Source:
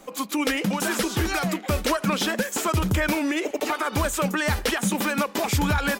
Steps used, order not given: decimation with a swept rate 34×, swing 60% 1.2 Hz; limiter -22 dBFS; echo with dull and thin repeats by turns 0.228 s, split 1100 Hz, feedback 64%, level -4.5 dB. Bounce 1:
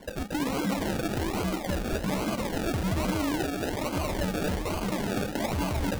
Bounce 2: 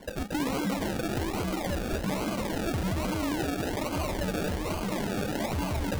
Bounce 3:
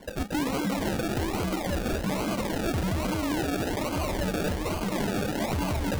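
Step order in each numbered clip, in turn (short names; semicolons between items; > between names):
limiter > echo with dull and thin repeats by turns > decimation with a swept rate; echo with dull and thin repeats by turns > limiter > decimation with a swept rate; echo with dull and thin repeats by turns > decimation with a swept rate > limiter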